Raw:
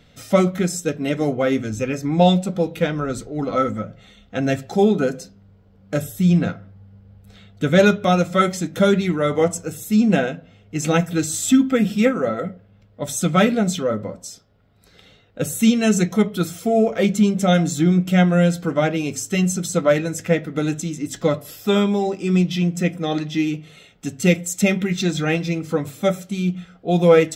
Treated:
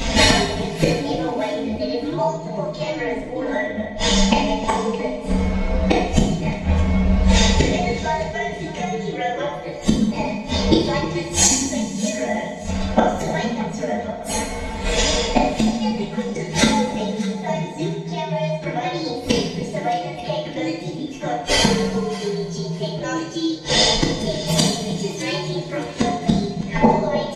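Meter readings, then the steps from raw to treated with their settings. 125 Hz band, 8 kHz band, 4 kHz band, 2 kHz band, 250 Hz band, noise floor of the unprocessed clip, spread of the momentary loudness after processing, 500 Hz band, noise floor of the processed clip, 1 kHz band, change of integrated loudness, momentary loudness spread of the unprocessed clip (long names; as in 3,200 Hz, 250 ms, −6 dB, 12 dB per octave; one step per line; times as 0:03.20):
−2.0 dB, +4.5 dB, +8.5 dB, +1.0 dB, −2.5 dB, −53 dBFS, 10 LU, −2.5 dB, −31 dBFS, +3.0 dB, −1.0 dB, 11 LU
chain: partials spread apart or drawn together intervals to 124%
parametric band 120 Hz −15 dB 0.57 octaves
comb filter 4.5 ms, depth 58%
downward compressor 8 to 1, threshold −26 dBFS, peak gain reduction 17 dB
Gaussian smoothing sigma 1.7 samples
high-shelf EQ 2,500 Hz +6.5 dB
gate with flip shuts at −34 dBFS, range −31 dB
delay that swaps between a low-pass and a high-pass 307 ms, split 860 Hz, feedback 57%, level −12 dB
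coupled-rooms reverb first 0.7 s, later 2.8 s, from −18 dB, DRR −1.5 dB
boost into a limiter +34.5 dB
level −1 dB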